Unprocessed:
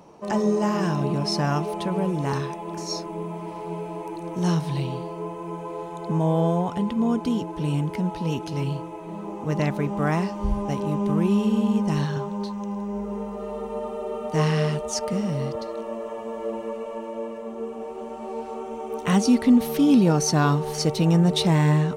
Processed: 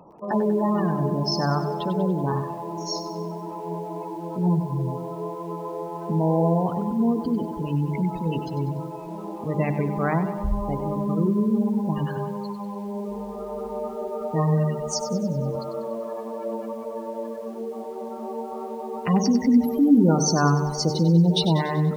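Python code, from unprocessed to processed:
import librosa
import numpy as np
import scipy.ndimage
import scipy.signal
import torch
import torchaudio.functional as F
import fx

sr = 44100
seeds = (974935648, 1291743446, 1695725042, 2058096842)

y = fx.hum_notches(x, sr, base_hz=50, count=9)
y = fx.spec_gate(y, sr, threshold_db=-20, keep='strong')
y = fx.echo_crushed(y, sr, ms=96, feedback_pct=55, bits=8, wet_db=-10.5)
y = F.gain(torch.from_numpy(y), 1.0).numpy()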